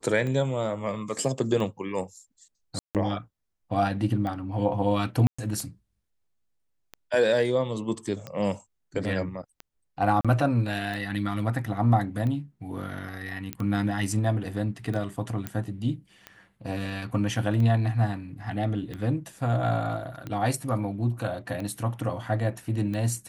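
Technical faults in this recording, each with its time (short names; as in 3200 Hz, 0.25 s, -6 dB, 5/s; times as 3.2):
tick 45 rpm -22 dBFS
2.79–2.95 gap 0.158 s
5.27–5.38 gap 0.115 s
10.21–10.25 gap 36 ms
13.53 pop -15 dBFS
15.47 pop -16 dBFS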